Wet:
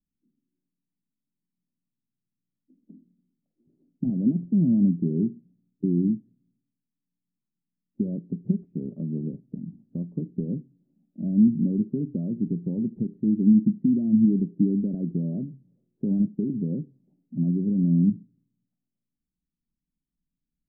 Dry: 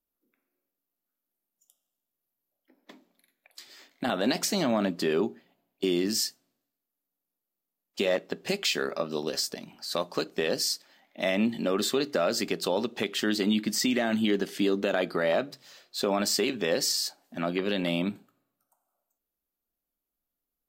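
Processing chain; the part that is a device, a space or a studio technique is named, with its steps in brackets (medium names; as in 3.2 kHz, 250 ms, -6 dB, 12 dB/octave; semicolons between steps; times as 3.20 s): the neighbour's flat through the wall (low-pass 250 Hz 24 dB/octave; peaking EQ 160 Hz +7.5 dB 0.71 oct); trim +7.5 dB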